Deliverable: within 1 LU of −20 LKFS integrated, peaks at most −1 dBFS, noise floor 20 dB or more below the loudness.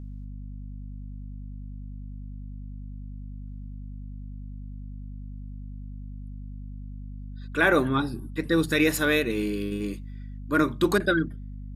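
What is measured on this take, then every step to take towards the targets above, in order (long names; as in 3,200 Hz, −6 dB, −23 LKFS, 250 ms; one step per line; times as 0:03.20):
mains hum 50 Hz; hum harmonics up to 250 Hz; level of the hum −35 dBFS; integrated loudness −25.0 LKFS; sample peak −8.0 dBFS; target loudness −20.0 LKFS
→ mains-hum notches 50/100/150/200/250 Hz
level +5 dB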